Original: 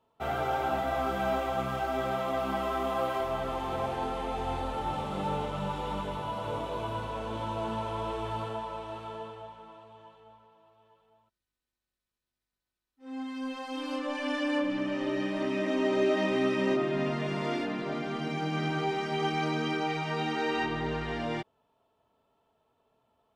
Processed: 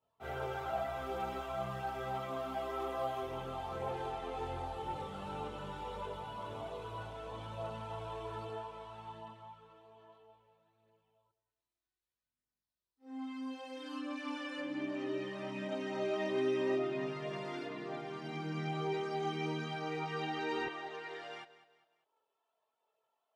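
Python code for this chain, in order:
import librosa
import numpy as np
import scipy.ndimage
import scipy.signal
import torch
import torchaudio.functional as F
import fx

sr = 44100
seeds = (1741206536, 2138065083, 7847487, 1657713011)

y = fx.highpass(x, sr, hz=fx.steps((0.0, 73.0), (20.66, 530.0)), slope=12)
y = fx.chorus_voices(y, sr, voices=4, hz=0.31, base_ms=24, depth_ms=1.5, mix_pct=65)
y = fx.echo_feedback(y, sr, ms=199, feedback_pct=39, wet_db=-16.0)
y = F.gain(torch.from_numpy(y), -6.0).numpy()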